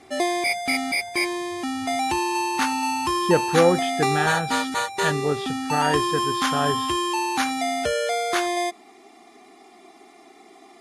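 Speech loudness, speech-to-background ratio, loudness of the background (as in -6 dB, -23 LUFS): -25.0 LUFS, -1.0 dB, -24.0 LUFS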